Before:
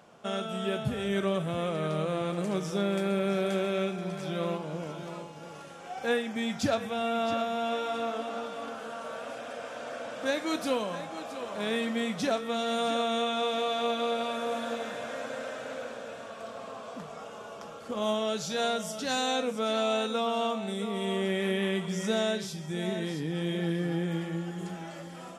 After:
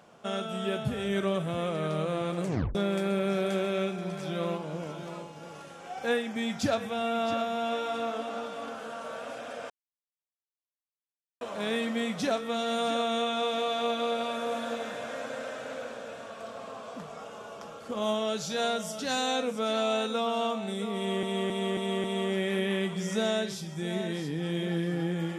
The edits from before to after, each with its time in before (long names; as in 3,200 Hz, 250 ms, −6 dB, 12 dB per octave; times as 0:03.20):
0:02.45: tape stop 0.30 s
0:09.70–0:11.41: silence
0:20.96–0:21.23: repeat, 5 plays